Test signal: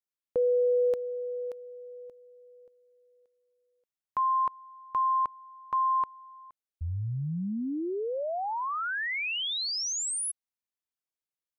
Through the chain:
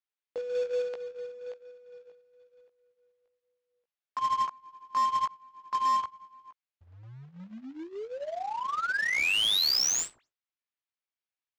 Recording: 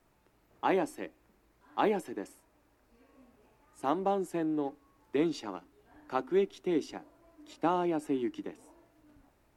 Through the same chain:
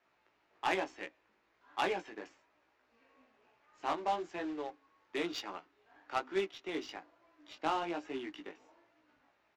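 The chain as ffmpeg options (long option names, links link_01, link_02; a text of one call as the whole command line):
ffmpeg -i in.wav -filter_complex "[0:a]highpass=frequency=1300:poles=1,acrossover=split=1900[link_01][link_02];[link_02]acontrast=46[link_03];[link_01][link_03]amix=inputs=2:normalize=0,asoftclip=type=tanh:threshold=-24dB,flanger=delay=15.5:depth=3.6:speed=1.1,aresample=16000,acrusher=bits=3:mode=log:mix=0:aa=0.000001,aresample=44100,adynamicsmooth=sensitivity=7.5:basefreq=2700,volume=6dB" out.wav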